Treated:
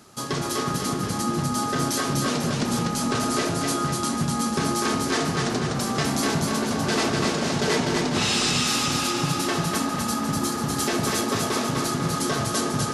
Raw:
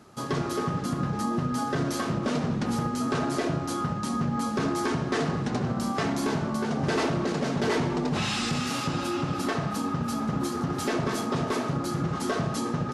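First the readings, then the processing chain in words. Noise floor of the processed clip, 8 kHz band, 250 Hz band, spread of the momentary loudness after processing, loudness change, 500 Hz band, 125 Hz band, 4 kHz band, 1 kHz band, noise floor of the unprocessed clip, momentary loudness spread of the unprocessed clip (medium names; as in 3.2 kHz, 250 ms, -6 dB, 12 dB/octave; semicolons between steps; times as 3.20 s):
-28 dBFS, +12.0 dB, +2.0 dB, 4 LU, +4.0 dB, +2.5 dB, +1.5 dB, +9.5 dB, +4.0 dB, -32 dBFS, 3 LU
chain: treble shelf 3 kHz +11.5 dB; on a send: two-band feedback delay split 370 Hz, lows 363 ms, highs 247 ms, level -3 dB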